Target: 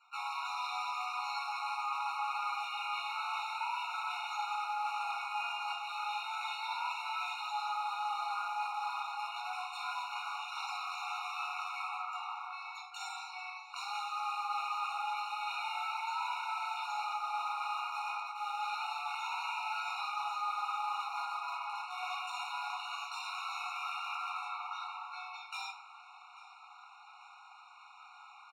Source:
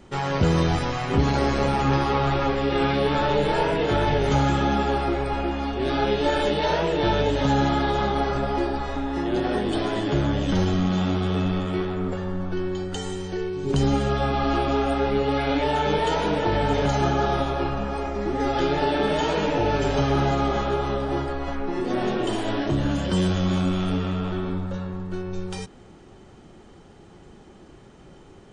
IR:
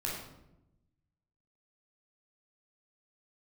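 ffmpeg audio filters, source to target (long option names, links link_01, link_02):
-filter_complex "[0:a]highpass=frequency=830:width=0.5412,highpass=frequency=830:width=1.3066,asplit=2[link_01][link_02];[link_02]acrusher=bits=4:mix=0:aa=0.000001,volume=-4dB[link_03];[link_01][link_03]amix=inputs=2:normalize=0,equalizer=frequency=2000:width=0.46:gain=9,aecho=1:1:843|1686|2529:0.0794|0.0389|0.0191,adynamicsmooth=sensitivity=6:basefreq=6700[link_04];[1:a]atrim=start_sample=2205,asetrate=74970,aresample=44100[link_05];[link_04][link_05]afir=irnorm=-1:irlink=0,areverse,acompressor=threshold=-35dB:ratio=5,areverse,afftfilt=real='re*eq(mod(floor(b*sr/1024/730),2),1)':imag='im*eq(mod(floor(b*sr/1024/730),2),1)':win_size=1024:overlap=0.75"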